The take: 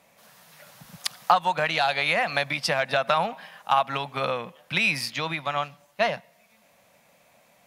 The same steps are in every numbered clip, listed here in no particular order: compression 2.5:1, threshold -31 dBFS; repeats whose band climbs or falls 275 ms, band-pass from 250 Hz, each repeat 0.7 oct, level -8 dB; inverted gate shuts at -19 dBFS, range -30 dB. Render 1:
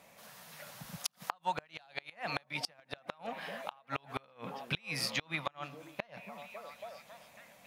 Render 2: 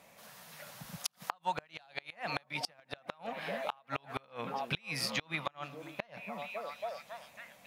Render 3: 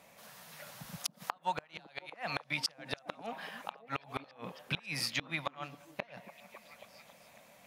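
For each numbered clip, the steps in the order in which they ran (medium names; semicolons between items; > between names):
compression > repeats whose band climbs or falls > inverted gate; repeats whose band climbs or falls > compression > inverted gate; compression > inverted gate > repeats whose band climbs or falls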